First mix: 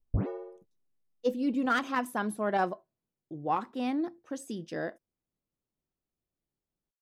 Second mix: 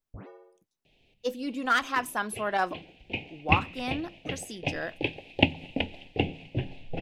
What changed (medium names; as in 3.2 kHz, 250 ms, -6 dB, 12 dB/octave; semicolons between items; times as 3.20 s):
first sound -9.5 dB; second sound: unmuted; master: add tilt shelf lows -7 dB, about 670 Hz